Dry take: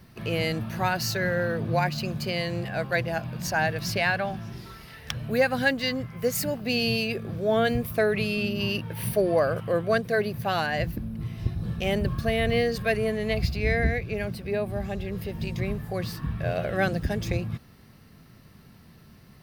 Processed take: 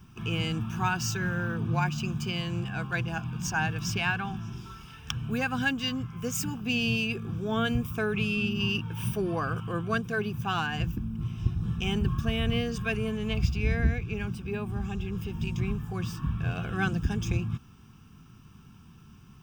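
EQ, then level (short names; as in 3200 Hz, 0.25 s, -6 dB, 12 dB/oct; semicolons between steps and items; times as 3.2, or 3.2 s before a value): fixed phaser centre 2900 Hz, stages 8; +1.0 dB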